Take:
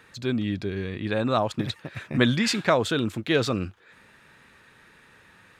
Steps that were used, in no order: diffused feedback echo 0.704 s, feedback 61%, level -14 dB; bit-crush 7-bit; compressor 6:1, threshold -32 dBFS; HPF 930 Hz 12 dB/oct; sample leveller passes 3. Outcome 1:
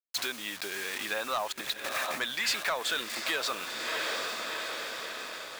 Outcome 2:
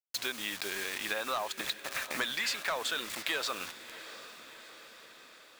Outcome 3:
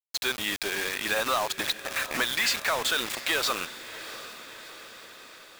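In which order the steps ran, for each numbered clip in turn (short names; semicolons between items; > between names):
bit-crush > diffused feedback echo > compressor > HPF > sample leveller; bit-crush > HPF > sample leveller > compressor > diffused feedback echo; HPF > compressor > bit-crush > sample leveller > diffused feedback echo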